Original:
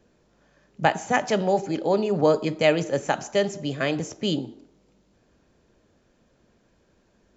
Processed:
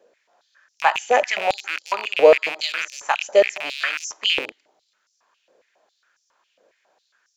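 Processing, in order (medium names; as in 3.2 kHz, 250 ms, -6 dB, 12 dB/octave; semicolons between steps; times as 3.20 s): rattle on loud lows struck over -38 dBFS, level -17 dBFS; step-sequenced high-pass 7.3 Hz 520–5600 Hz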